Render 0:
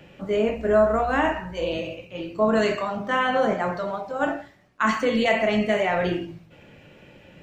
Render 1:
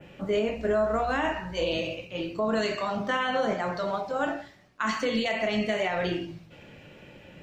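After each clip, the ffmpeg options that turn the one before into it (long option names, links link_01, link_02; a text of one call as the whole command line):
ffmpeg -i in.wav -af "adynamicequalizer=threshold=0.00501:dfrequency=4600:dqfactor=0.97:tfrequency=4600:tqfactor=0.97:attack=5:release=100:ratio=0.375:range=4:mode=boostabove:tftype=bell,alimiter=limit=-17.5dB:level=0:latency=1:release=347" out.wav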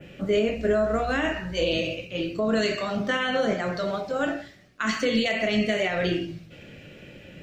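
ffmpeg -i in.wav -af "equalizer=frequency=930:width=2.2:gain=-11.5,volume=4.5dB" out.wav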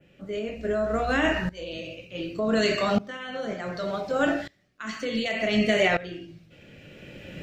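ffmpeg -i in.wav -af "aeval=exprs='val(0)*pow(10,-20*if(lt(mod(-0.67*n/s,1),2*abs(-0.67)/1000),1-mod(-0.67*n/s,1)/(2*abs(-0.67)/1000),(mod(-0.67*n/s,1)-2*abs(-0.67)/1000)/(1-2*abs(-0.67)/1000))/20)':channel_layout=same,volume=6dB" out.wav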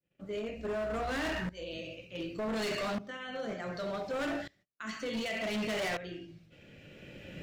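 ffmpeg -i in.wav -af "volume=26dB,asoftclip=hard,volume=-26dB,agate=range=-28dB:threshold=-55dB:ratio=16:detection=peak,volume=-5.5dB" out.wav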